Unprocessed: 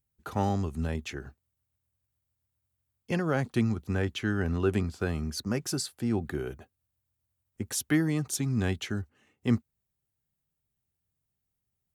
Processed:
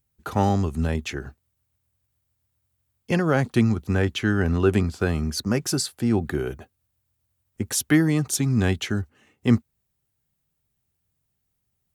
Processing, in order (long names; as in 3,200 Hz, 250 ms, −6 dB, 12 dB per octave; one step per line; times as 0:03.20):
level +7 dB